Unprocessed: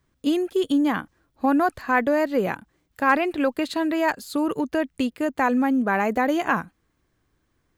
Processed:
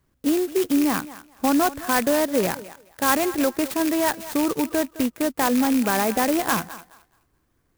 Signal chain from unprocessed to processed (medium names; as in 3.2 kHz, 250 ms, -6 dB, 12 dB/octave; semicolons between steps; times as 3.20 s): rattle on loud lows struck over -31 dBFS, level -20 dBFS; in parallel at -1 dB: peak limiter -15 dBFS, peak gain reduction 8 dB; on the sum: thinning echo 212 ms, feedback 23%, high-pass 370 Hz, level -15 dB; sampling jitter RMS 0.074 ms; trim -4 dB